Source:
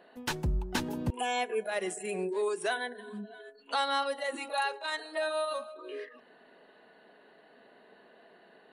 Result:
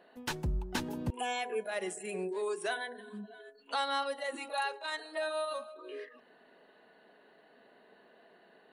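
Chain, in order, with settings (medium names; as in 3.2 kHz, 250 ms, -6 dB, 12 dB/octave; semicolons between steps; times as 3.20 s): 1.32–3.32 s: de-hum 82.42 Hz, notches 13; trim -3 dB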